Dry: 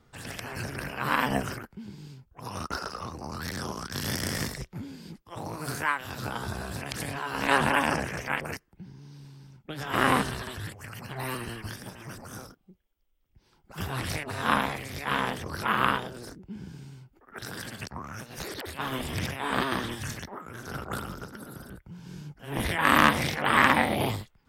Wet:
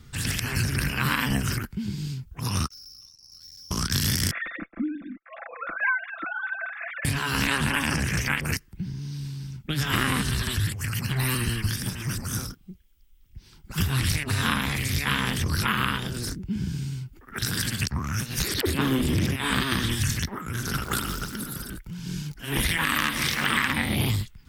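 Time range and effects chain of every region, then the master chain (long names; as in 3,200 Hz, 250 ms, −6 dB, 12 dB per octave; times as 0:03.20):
0:02.68–0:03.71: resonant band-pass 5,400 Hz, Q 18 + tube saturation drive 57 dB, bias 0.3
0:04.31–0:07.05: three sine waves on the formant tracks + phaser with its sweep stopped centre 620 Hz, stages 8 + comb filter 5.9 ms, depth 49%
0:18.63–0:19.36: parametric band 340 Hz +14.5 dB 2.1 octaves + saturating transformer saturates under 380 Hz
0:20.67–0:23.68: parametric band 81 Hz −11 dB 1.9 octaves + phase shifter 1.4 Hz, delay 3.4 ms, feedback 30% + feedback echo at a low word length 172 ms, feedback 55%, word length 7 bits, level −13.5 dB
whole clip: guitar amp tone stack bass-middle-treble 6-0-2; downward compressor 6 to 1, threshold −50 dBFS; boost into a limiter +35.5 dB; level −6.5 dB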